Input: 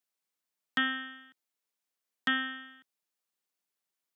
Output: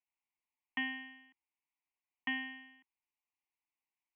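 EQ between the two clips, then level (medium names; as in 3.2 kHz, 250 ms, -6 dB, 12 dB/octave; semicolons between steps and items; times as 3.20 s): brick-wall FIR low-pass 4.3 kHz; static phaser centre 880 Hz, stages 8; static phaser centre 2.4 kHz, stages 8; +1.0 dB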